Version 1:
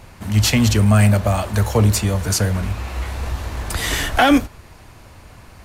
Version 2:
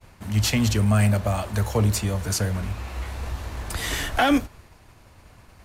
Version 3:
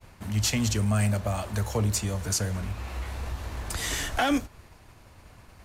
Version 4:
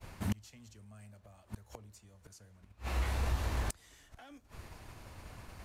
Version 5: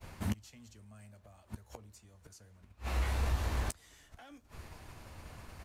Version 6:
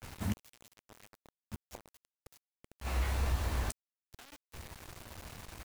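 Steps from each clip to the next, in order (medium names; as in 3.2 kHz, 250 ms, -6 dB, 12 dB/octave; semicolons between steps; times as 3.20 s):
expander -39 dBFS; trim -6 dB
dynamic bell 6.8 kHz, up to +6 dB, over -44 dBFS, Q 1.3; in parallel at 0 dB: compression, threshold -31 dBFS, peak gain reduction 14.5 dB; on the sum: trim -7 dB
inverted gate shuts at -23 dBFS, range -31 dB; trim +1 dB
doubling 13 ms -13 dB
bit crusher 8-bit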